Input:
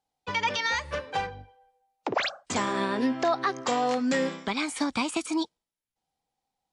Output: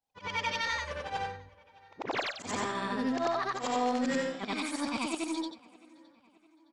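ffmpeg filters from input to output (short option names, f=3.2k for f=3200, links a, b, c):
-filter_complex "[0:a]afftfilt=real='re':imag='-im':win_size=8192:overlap=0.75,asplit=2[a][b];[b]adelay=614,lowpass=f=4.5k:p=1,volume=-23dB,asplit=2[c][d];[d]adelay=614,lowpass=f=4.5k:p=1,volume=0.51,asplit=2[e][f];[f]adelay=614,lowpass=f=4.5k:p=1,volume=0.51[g];[a][c][e][g]amix=inputs=4:normalize=0,aeval=exprs='0.126*(cos(1*acos(clip(val(0)/0.126,-1,1)))-cos(1*PI/2))+0.002*(cos(7*acos(clip(val(0)/0.126,-1,1)))-cos(7*PI/2))+0.000891*(cos(8*acos(clip(val(0)/0.126,-1,1)))-cos(8*PI/2))':c=same"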